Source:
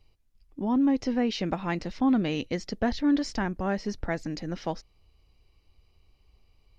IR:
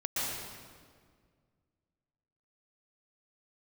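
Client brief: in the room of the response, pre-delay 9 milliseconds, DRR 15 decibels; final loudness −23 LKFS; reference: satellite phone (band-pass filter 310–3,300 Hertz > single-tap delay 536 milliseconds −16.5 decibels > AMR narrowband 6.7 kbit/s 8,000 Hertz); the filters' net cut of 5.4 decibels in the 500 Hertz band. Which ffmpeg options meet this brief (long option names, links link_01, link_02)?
-filter_complex "[0:a]equalizer=frequency=500:width_type=o:gain=-6,asplit=2[link_01][link_02];[1:a]atrim=start_sample=2205,adelay=9[link_03];[link_02][link_03]afir=irnorm=-1:irlink=0,volume=-22dB[link_04];[link_01][link_04]amix=inputs=2:normalize=0,highpass=310,lowpass=3300,aecho=1:1:536:0.15,volume=11.5dB" -ar 8000 -c:a libopencore_amrnb -b:a 6700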